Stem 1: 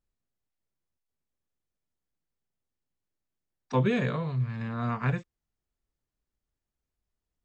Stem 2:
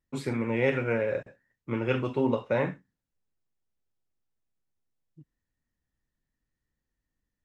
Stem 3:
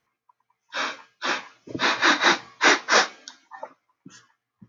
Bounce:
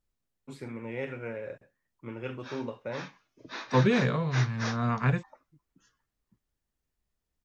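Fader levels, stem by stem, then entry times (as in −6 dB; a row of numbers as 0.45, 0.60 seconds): +2.0, −10.0, −18.0 decibels; 0.00, 0.35, 1.70 seconds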